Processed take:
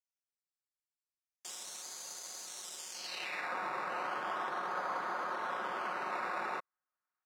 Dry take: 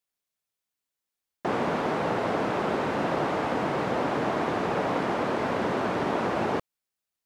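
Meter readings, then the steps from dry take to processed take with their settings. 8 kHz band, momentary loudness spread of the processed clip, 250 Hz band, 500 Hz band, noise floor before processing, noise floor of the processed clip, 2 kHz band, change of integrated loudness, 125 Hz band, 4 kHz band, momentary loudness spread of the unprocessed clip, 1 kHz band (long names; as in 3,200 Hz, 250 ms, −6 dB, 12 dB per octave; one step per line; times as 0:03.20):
+6.0 dB, 6 LU, −24.0 dB, −18.0 dB, below −85 dBFS, below −85 dBFS, −7.0 dB, −11.0 dB, −28.0 dB, −5.5 dB, 1 LU, −9.0 dB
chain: sample-and-hold swept by an LFO 11×, swing 60% 0.35 Hz
comb filter 5.5 ms, depth 45%
band-pass filter sweep 7,100 Hz → 1,300 Hz, 0:02.90–0:03.53
level −2 dB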